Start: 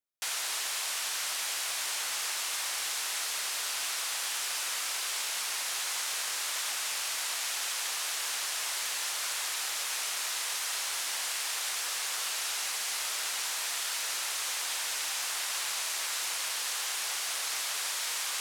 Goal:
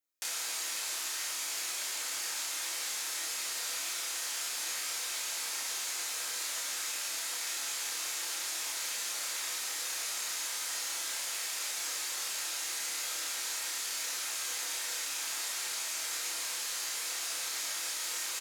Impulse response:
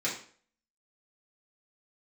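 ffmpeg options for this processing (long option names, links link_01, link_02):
-filter_complex "[0:a]acrossover=split=440[link_01][link_02];[link_02]acompressor=threshold=-40dB:ratio=3[link_03];[link_01][link_03]amix=inputs=2:normalize=0,asplit=2[link_04][link_05];[link_05]adelay=30,volume=-3dB[link_06];[link_04][link_06]amix=inputs=2:normalize=0,asplit=2[link_07][link_08];[1:a]atrim=start_sample=2205,highshelf=frequency=5800:gain=12[link_09];[link_08][link_09]afir=irnorm=-1:irlink=0,volume=-8dB[link_10];[link_07][link_10]amix=inputs=2:normalize=0,volume=-3.5dB"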